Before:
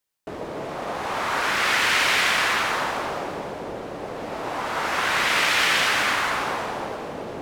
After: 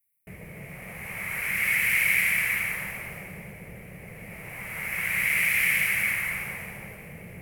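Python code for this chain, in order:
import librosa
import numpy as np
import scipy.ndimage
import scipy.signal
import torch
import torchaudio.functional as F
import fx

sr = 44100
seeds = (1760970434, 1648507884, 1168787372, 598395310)

y = fx.curve_eq(x, sr, hz=(190.0, 270.0, 490.0, 960.0, 1500.0, 2200.0, 3600.0, 7100.0, 11000.0), db=(0, -20, -15, -22, -16, 5, -23, -12, 9))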